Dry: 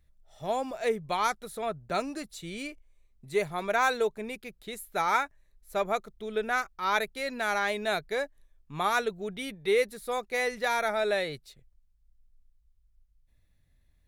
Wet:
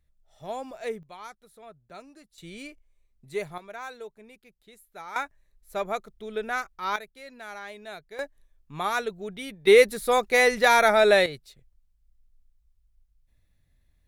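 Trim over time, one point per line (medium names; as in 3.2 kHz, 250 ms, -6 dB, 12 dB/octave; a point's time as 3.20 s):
-4.5 dB
from 1.03 s -15 dB
from 2.38 s -3.5 dB
from 3.58 s -13.5 dB
from 5.16 s -1 dB
from 6.96 s -11.5 dB
from 8.19 s -0.5 dB
from 9.67 s +9.5 dB
from 11.26 s +0.5 dB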